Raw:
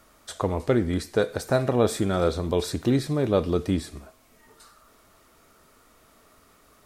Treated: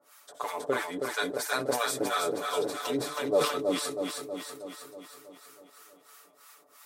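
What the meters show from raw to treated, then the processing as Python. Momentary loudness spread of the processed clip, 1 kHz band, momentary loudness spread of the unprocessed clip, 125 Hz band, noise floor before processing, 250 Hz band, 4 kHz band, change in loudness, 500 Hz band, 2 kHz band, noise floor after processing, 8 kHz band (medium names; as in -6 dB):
16 LU, +1.0 dB, 6 LU, -20.5 dB, -59 dBFS, -10.0 dB, +2.0 dB, -5.5 dB, -5.0 dB, +3.0 dB, -60 dBFS, +3.0 dB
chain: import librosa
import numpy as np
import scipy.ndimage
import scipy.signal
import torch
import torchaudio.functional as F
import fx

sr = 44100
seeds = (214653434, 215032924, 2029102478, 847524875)

y = scipy.signal.sosfilt(scipy.signal.butter(2, 550.0, 'highpass', fs=sr, output='sos'), x)
y = fx.high_shelf(y, sr, hz=7200.0, db=7.5)
y = y + 0.98 * np.pad(y, (int(6.9 * sr / 1000.0), 0))[:len(y)]
y = fx.quant_float(y, sr, bits=8)
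y = fx.harmonic_tremolo(y, sr, hz=3.0, depth_pct=100, crossover_hz=790.0)
y = fx.echo_feedback(y, sr, ms=320, feedback_pct=59, wet_db=-4.5)
y = fx.sustainer(y, sr, db_per_s=81.0)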